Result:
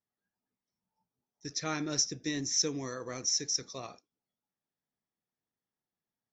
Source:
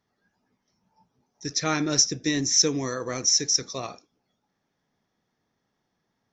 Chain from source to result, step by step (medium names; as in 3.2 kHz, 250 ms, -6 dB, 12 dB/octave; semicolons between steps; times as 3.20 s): gate -44 dBFS, range -10 dB; trim -9 dB